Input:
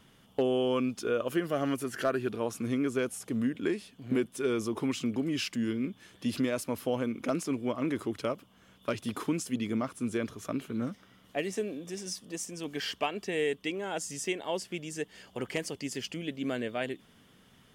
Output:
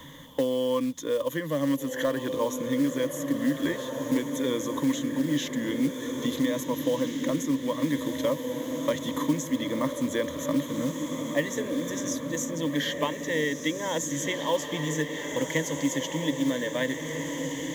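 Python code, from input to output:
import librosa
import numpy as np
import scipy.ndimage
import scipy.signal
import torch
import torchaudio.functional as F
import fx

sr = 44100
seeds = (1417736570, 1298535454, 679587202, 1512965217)

y = fx.ripple_eq(x, sr, per_octave=1.1, db=18)
y = fx.quant_companded(y, sr, bits=6)
y = fx.rider(y, sr, range_db=3, speed_s=0.5)
y = fx.echo_diffused(y, sr, ms=1665, feedback_pct=48, wet_db=-6.5)
y = fx.band_squash(y, sr, depth_pct=40)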